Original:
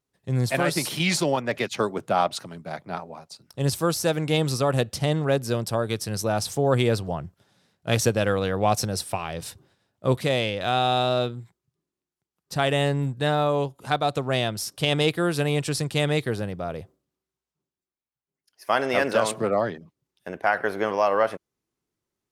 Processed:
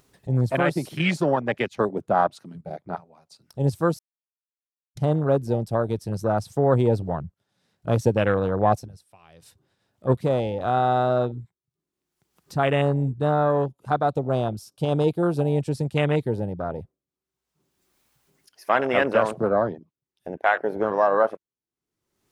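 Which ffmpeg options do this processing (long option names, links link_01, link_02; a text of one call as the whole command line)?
ffmpeg -i in.wav -filter_complex "[0:a]asettb=1/sr,asplit=3[link_01][link_02][link_03];[link_01]atrim=end=14.124[link_04];[link_02]atrim=start=14.12:end=15.53,asetpts=PTS-STARTPTS,afade=type=in:duration=0.004:curve=qsin,afade=type=out:start_time=1.406:duration=0.004:curve=qsin,equalizer=frequency=1900:width=5.1:gain=-13.5[link_05];[link_03]atrim=start=15.526[link_06];[link_04][link_05]acrossfade=duration=0.004:curve1=hsin:curve2=qsin[link_07];[link_07][link_06]acrossfade=duration=0.004:curve1=qsin:curve2=hsin,asplit=5[link_08][link_09][link_10][link_11][link_12];[link_08]atrim=end=3.99,asetpts=PTS-STARTPTS,afade=type=out:start_time=3.986:duration=0.004:curve=hsin[link_13];[link_09]atrim=start=3.99:end=4.97,asetpts=PTS-STARTPTS,volume=0[link_14];[link_10]atrim=start=4.97:end=9.08,asetpts=PTS-STARTPTS,afade=type=in:duration=0.004:curve=hsin,afade=type=out:start_time=3.81:duration=0.3:curve=exp:silence=0.223872[link_15];[link_11]atrim=start=9.08:end=9.8,asetpts=PTS-STARTPTS,volume=-13dB[link_16];[link_12]atrim=start=9.8,asetpts=PTS-STARTPTS,afade=type=in:duration=0.3:curve=exp:silence=0.223872[link_17];[link_13][link_14][link_15][link_16][link_17]concat=n=5:v=0:a=1,afwtdn=0.0447,acompressor=mode=upward:threshold=-39dB:ratio=2.5,volume=2dB" out.wav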